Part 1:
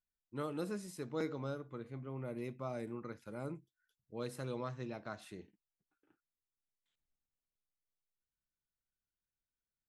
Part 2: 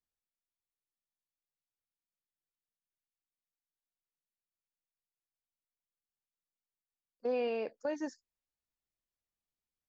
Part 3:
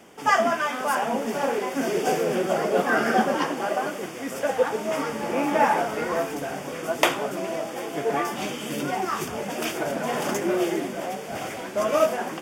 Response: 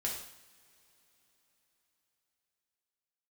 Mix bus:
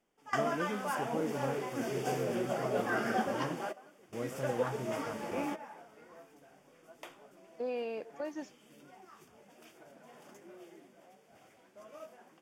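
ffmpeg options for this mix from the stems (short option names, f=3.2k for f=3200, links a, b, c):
-filter_complex "[0:a]lowpass=1.2k,volume=2.5dB,asplit=2[a][b];[1:a]adelay=350,volume=-3.5dB[c];[2:a]volume=-11dB[d];[b]apad=whole_len=547568[e];[d][e]sidechaingate=range=-18dB:threshold=-60dB:ratio=16:detection=peak[f];[a][c][f]amix=inputs=3:normalize=0"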